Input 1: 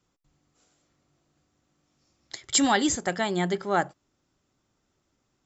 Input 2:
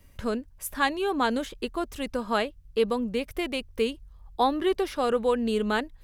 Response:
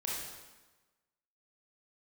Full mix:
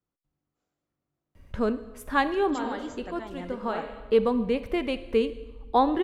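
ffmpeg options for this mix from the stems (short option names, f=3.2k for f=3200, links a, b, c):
-filter_complex "[0:a]volume=-13dB,asplit=2[a][b];[1:a]adelay=1350,volume=2dB,asplit=2[c][d];[d]volume=-13dB[e];[b]apad=whole_len=325583[f];[c][f]sidechaincompress=threshold=-49dB:ratio=8:attack=16:release=113[g];[2:a]atrim=start_sample=2205[h];[e][h]afir=irnorm=-1:irlink=0[i];[a][g][i]amix=inputs=3:normalize=0,lowpass=f=1.6k:p=1"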